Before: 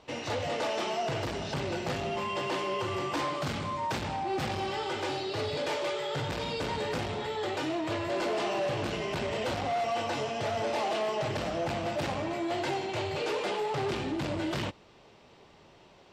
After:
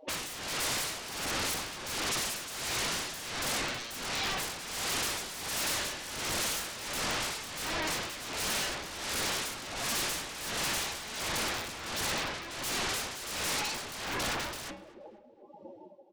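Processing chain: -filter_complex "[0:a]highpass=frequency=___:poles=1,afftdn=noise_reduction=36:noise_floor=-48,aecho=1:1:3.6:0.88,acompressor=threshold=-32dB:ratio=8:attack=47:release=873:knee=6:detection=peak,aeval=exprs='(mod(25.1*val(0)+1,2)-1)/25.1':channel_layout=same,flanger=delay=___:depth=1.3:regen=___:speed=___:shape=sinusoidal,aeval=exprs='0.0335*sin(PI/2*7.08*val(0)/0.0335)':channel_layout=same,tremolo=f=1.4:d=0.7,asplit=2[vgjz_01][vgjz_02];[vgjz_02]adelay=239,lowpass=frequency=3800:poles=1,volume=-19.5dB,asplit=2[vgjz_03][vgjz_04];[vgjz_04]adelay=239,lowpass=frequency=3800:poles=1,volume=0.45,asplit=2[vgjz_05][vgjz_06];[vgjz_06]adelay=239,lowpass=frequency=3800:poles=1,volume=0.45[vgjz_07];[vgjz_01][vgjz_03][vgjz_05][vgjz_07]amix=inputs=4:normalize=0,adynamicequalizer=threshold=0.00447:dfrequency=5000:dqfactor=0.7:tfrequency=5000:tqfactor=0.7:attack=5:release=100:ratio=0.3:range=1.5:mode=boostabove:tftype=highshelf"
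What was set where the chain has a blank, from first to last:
140, 7.8, -84, 0.41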